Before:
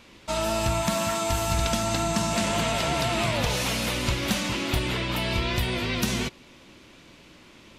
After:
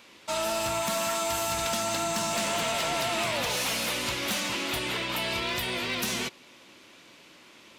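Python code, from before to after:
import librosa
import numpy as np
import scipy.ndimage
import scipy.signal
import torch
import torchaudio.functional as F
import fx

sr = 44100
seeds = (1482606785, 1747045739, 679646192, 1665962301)

y = fx.highpass(x, sr, hz=450.0, slope=6)
y = fx.high_shelf(y, sr, hz=12000.0, db=5.0)
y = np.clip(10.0 ** (24.0 / 20.0) * y, -1.0, 1.0) / 10.0 ** (24.0 / 20.0)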